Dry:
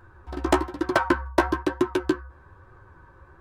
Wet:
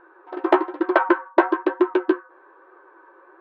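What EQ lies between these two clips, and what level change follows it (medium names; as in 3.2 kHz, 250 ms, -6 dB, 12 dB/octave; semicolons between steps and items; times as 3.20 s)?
brick-wall FIR high-pass 300 Hz; distance through air 500 m; +6.5 dB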